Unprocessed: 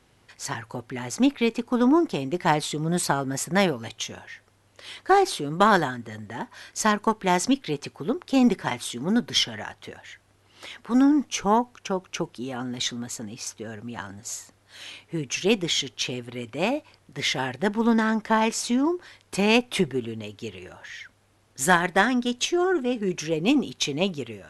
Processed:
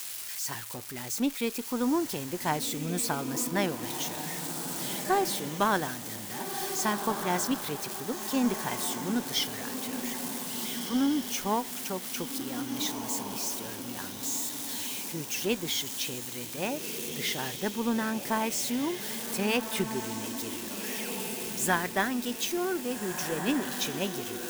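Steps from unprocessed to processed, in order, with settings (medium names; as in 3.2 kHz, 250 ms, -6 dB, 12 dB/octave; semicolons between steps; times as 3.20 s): zero-crossing glitches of -20.5 dBFS; on a send: echo that smears into a reverb 1637 ms, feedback 45%, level -7 dB; on the sum: trim -8 dB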